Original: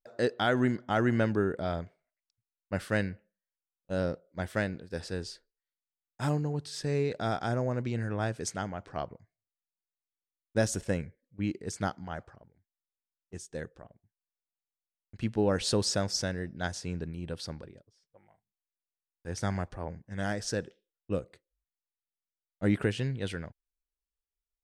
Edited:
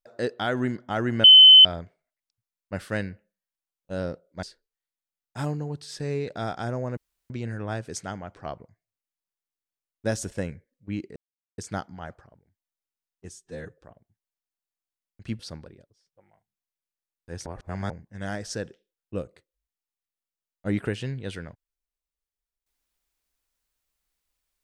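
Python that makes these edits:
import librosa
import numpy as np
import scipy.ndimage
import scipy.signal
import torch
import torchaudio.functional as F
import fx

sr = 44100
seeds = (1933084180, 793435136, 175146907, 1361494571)

y = fx.edit(x, sr, fx.bleep(start_s=1.24, length_s=0.41, hz=3050.0, db=-7.0),
    fx.cut(start_s=4.43, length_s=0.84),
    fx.insert_room_tone(at_s=7.81, length_s=0.33),
    fx.insert_silence(at_s=11.67, length_s=0.42),
    fx.stretch_span(start_s=13.42, length_s=0.3, factor=1.5),
    fx.cut(start_s=15.33, length_s=2.03),
    fx.reverse_span(start_s=19.43, length_s=0.44), tone=tone)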